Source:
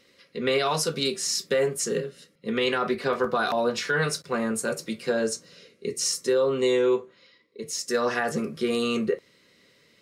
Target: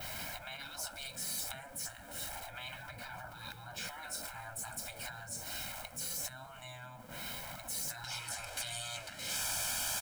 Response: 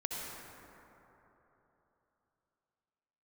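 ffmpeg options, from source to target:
-af "aeval=exprs='val(0)+0.5*0.0158*sgn(val(0))':c=same,asetnsamples=n=441:p=0,asendcmd='8.04 equalizer g 4',equalizer=f=4200:w=0.36:g=-12.5,acompressor=threshold=0.0178:ratio=12,adynamicequalizer=threshold=0.00178:dfrequency=8600:dqfactor=1.2:tfrequency=8600:tqfactor=1.2:attack=5:release=100:ratio=0.375:range=3:mode=boostabove:tftype=bell,afftfilt=real='re*lt(hypot(re,im),0.0141)':imag='im*lt(hypot(re,im),0.0141)':win_size=1024:overlap=0.75,aecho=1:1:1.3:0.81,volume=1.88"

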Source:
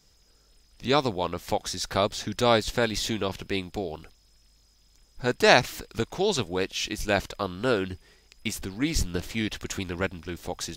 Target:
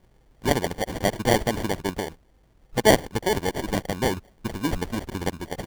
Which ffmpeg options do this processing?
-af "atempo=1.9,acrusher=samples=34:mix=1:aa=0.000001,volume=1.33"

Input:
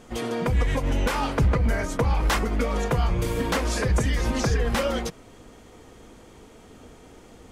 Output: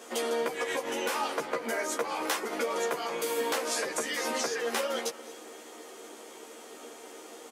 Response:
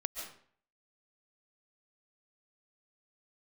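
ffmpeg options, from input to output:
-filter_complex "[0:a]highpass=f=320:w=0.5412,highpass=f=320:w=1.3066,highshelf=f=6500:g=8.5,acompressor=threshold=0.0224:ratio=4,asplit=2[s0][s1];[s1]adelay=13,volume=0.75[s2];[s0][s2]amix=inputs=2:normalize=0,asplit=2[s3][s4];[1:a]atrim=start_sample=2205,asetrate=28665,aresample=44100[s5];[s4][s5]afir=irnorm=-1:irlink=0,volume=0.188[s6];[s3][s6]amix=inputs=2:normalize=0"

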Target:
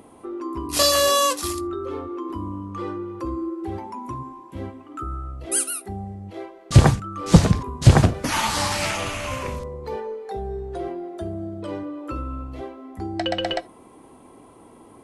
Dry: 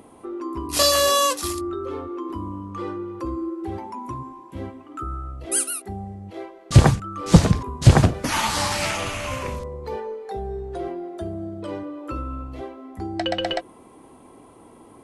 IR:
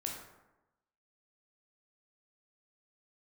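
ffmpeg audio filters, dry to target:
-filter_complex "[0:a]asplit=2[s0][s1];[1:a]atrim=start_sample=2205,atrim=end_sample=3969[s2];[s1][s2]afir=irnorm=-1:irlink=0,volume=0.15[s3];[s0][s3]amix=inputs=2:normalize=0,volume=0.891"

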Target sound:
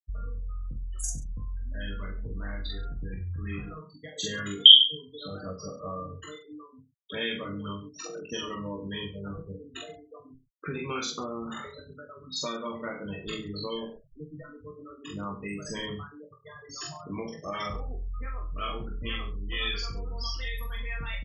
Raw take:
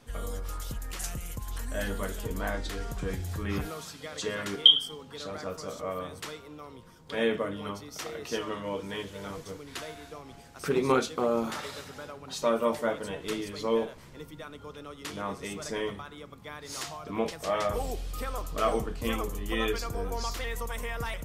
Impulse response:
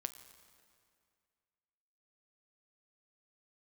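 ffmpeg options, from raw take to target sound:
-filter_complex "[0:a]afftfilt=real='re*gte(hypot(re,im),0.0316)':imag='im*gte(hypot(re,im),0.0316)':win_size=1024:overlap=0.75,equalizer=f=720:t=o:w=2.3:g=-11,asplit=2[s0][s1];[s1]aecho=0:1:20|43|69.45|99.87|134.8:0.631|0.398|0.251|0.158|0.1[s2];[s0][s2]amix=inputs=2:normalize=0,adynamicequalizer=threshold=0.00251:dfrequency=1200:dqfactor=3.6:tfrequency=1200:tqfactor=3.6:attack=5:release=100:ratio=0.375:range=2:mode=boostabove:tftype=bell,acrossover=split=2100[s3][s4];[s3]acompressor=threshold=0.0126:ratio=6[s5];[s4]asplit=2[s6][s7];[s7]adelay=43,volume=0.708[s8];[s6][s8]amix=inputs=2:normalize=0[s9];[s5][s9]amix=inputs=2:normalize=0,volume=1.88"

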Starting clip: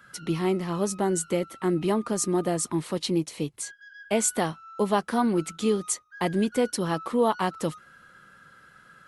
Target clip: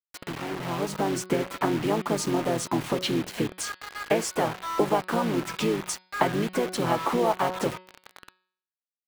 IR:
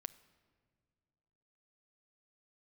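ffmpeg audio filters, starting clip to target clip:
-filter_complex "[1:a]atrim=start_sample=2205,atrim=end_sample=3528[s0];[0:a][s0]afir=irnorm=-1:irlink=0,acompressor=threshold=0.0158:ratio=12,equalizer=f=840:t=o:w=0.31:g=4,asplit=4[s1][s2][s3][s4];[s2]asetrate=33038,aresample=44100,atempo=1.33484,volume=0.794[s5];[s3]asetrate=37084,aresample=44100,atempo=1.18921,volume=0.178[s6];[s4]asetrate=58866,aresample=44100,atempo=0.749154,volume=0.126[s7];[s1][s5][s6][s7]amix=inputs=4:normalize=0,aeval=exprs='val(0)+0.000398*(sin(2*PI*50*n/s)+sin(2*PI*2*50*n/s)/2+sin(2*PI*3*50*n/s)/3+sin(2*PI*4*50*n/s)/4+sin(2*PI*5*50*n/s)/5)':c=same,dynaudnorm=f=180:g=9:m=3.16,acrusher=bits=5:mix=0:aa=0.000001,bass=f=250:g=-6,treble=f=4000:g=-9,bandreject=f=184.5:t=h:w=4,bandreject=f=369:t=h:w=4,bandreject=f=553.5:t=h:w=4,bandreject=f=738:t=h:w=4,bandreject=f=922.5:t=h:w=4,bandreject=f=1107:t=h:w=4,bandreject=f=1291.5:t=h:w=4,bandreject=f=1476:t=h:w=4,bandreject=f=1660.5:t=h:w=4,bandreject=f=1845:t=h:w=4,bandreject=f=2029.5:t=h:w=4,bandreject=f=2214:t=h:w=4,bandreject=f=2398.5:t=h:w=4,bandreject=f=2583:t=h:w=4,bandreject=f=2767.5:t=h:w=4,bandreject=f=2952:t=h:w=4,bandreject=f=3136.5:t=h:w=4,bandreject=f=3321:t=h:w=4,bandreject=f=3505.5:t=h:w=4,bandreject=f=3690:t=h:w=4,bandreject=f=3874.5:t=h:w=4,bandreject=f=4059:t=h:w=4,bandreject=f=4243.5:t=h:w=4,bandreject=f=4428:t=h:w=4,bandreject=f=4612.5:t=h:w=4,bandreject=f=4797:t=h:w=4,bandreject=f=4981.5:t=h:w=4,volume=1.58"

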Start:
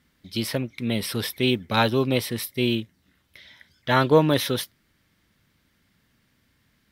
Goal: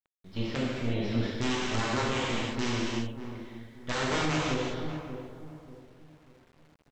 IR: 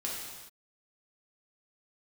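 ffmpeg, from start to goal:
-filter_complex "[0:a]aeval=exprs='if(lt(val(0),0),0.251*val(0),val(0))':c=same,aemphasis=mode=reproduction:type=50kf,aresample=16000,aeval=exprs='(mod(4.22*val(0)+1,2)-1)/4.22':c=same,aresample=44100,lowshelf=f=71:g=5,asplit=2[s0][s1];[s1]adelay=586,lowpass=f=870:p=1,volume=0.251,asplit=2[s2][s3];[s3]adelay=586,lowpass=f=870:p=1,volume=0.37,asplit=2[s4][s5];[s5]adelay=586,lowpass=f=870:p=1,volume=0.37,asplit=2[s6][s7];[s7]adelay=586,lowpass=f=870:p=1,volume=0.37[s8];[s0][s2][s4][s6][s8]amix=inputs=5:normalize=0[s9];[1:a]atrim=start_sample=2205,afade=t=out:st=0.34:d=0.01,atrim=end_sample=15435,asetrate=33957,aresample=44100[s10];[s9][s10]afir=irnorm=-1:irlink=0,acrusher=bits=8:mix=0:aa=0.000001,alimiter=limit=0.237:level=0:latency=1:release=261,lowpass=f=3100:p=1,volume=0.562"

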